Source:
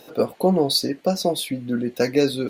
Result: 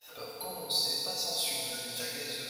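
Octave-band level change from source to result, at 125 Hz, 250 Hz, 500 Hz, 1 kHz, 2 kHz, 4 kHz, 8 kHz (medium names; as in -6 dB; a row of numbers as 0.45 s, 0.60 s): -23.5 dB, -27.0 dB, -20.5 dB, -14.0 dB, -7.5 dB, -4.0 dB, -1.5 dB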